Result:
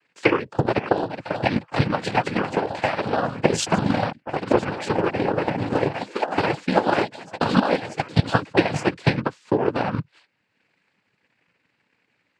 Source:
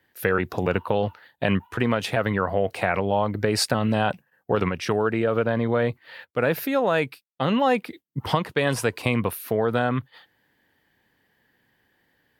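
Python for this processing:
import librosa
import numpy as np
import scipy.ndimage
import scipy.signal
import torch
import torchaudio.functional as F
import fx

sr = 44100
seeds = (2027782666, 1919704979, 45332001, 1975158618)

y = fx.echo_pitch(x, sr, ms=537, semitones=3, count=3, db_per_echo=-6.0)
y = fx.noise_vocoder(y, sr, seeds[0], bands=8)
y = fx.transient(y, sr, attack_db=10, sustain_db=-4)
y = y * 10.0 ** (-2.5 / 20.0)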